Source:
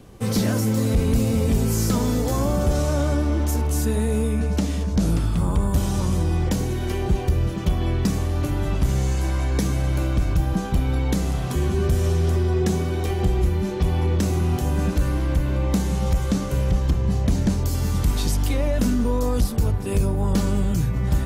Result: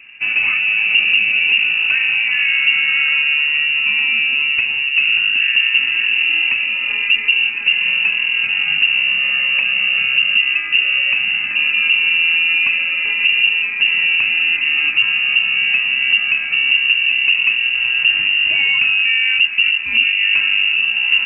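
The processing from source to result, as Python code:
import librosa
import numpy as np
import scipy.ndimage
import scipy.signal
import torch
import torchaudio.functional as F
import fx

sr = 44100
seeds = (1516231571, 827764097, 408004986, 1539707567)

y = fx.freq_invert(x, sr, carrier_hz=2800)
y = fx.graphic_eq_10(y, sr, hz=(250, 500, 2000), db=(7, -5, 7))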